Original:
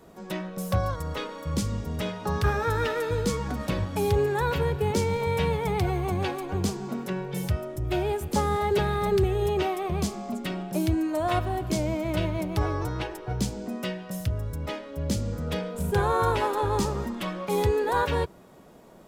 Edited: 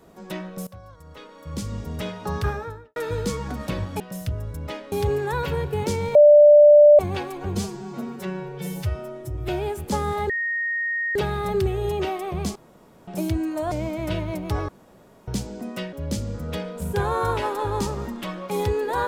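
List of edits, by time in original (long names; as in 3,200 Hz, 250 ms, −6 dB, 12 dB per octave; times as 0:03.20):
0:00.67–0:01.81: fade in quadratic, from −19 dB
0:02.35–0:02.96: fade out and dull
0:05.23–0:06.07: beep over 591 Hz −7.5 dBFS
0:06.63–0:07.92: time-stretch 1.5×
0:08.73: insert tone 1,860 Hz −22.5 dBFS 0.86 s
0:10.13–0:10.65: fill with room tone
0:11.29–0:11.78: remove
0:12.75–0:13.34: fill with room tone
0:13.99–0:14.91: move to 0:04.00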